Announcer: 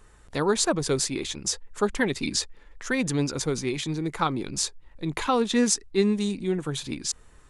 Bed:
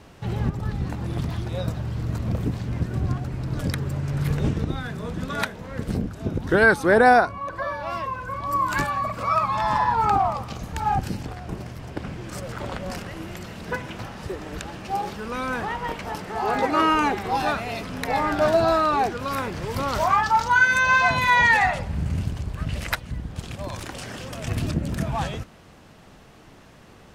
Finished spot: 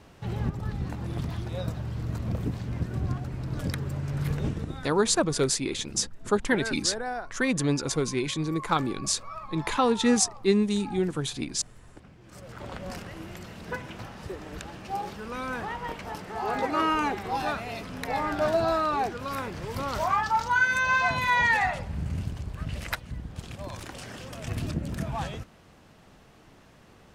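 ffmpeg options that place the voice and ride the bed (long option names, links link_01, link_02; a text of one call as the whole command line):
ffmpeg -i stem1.wav -i stem2.wav -filter_complex "[0:a]adelay=4500,volume=0dB[link_01];[1:a]volume=8.5dB,afade=type=out:start_time=4.26:duration=0.99:silence=0.199526,afade=type=in:start_time=12.2:duration=0.66:silence=0.223872[link_02];[link_01][link_02]amix=inputs=2:normalize=0" out.wav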